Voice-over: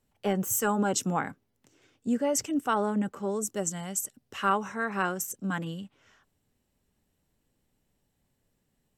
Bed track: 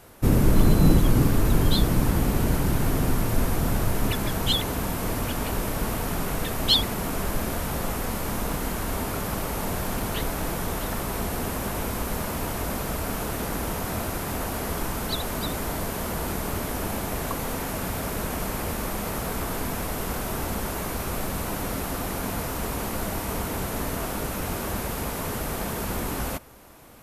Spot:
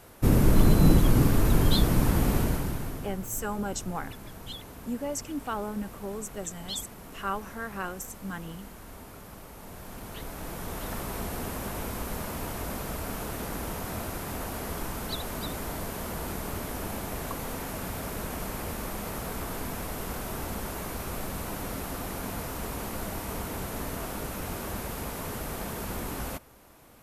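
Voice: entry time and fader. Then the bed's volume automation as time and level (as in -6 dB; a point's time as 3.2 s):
2.80 s, -6.0 dB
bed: 2.36 s -1.5 dB
3.18 s -17 dB
9.57 s -17 dB
10.93 s -5.5 dB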